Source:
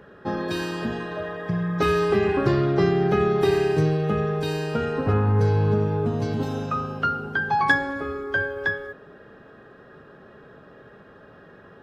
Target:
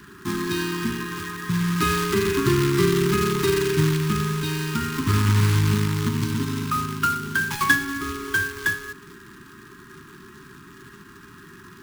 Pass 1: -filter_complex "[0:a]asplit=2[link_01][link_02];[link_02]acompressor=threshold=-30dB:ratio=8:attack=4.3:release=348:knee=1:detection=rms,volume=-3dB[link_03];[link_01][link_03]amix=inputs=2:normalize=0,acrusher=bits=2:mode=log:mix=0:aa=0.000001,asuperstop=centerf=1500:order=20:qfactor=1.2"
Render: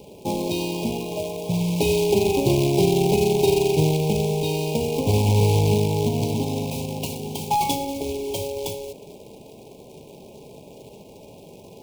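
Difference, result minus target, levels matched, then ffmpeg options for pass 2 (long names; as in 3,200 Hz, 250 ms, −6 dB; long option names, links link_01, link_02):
2,000 Hz band −13.0 dB
-filter_complex "[0:a]asplit=2[link_01][link_02];[link_02]acompressor=threshold=-30dB:ratio=8:attack=4.3:release=348:knee=1:detection=rms,volume=-3dB[link_03];[link_01][link_03]amix=inputs=2:normalize=0,acrusher=bits=2:mode=log:mix=0:aa=0.000001,asuperstop=centerf=600:order=20:qfactor=1.2"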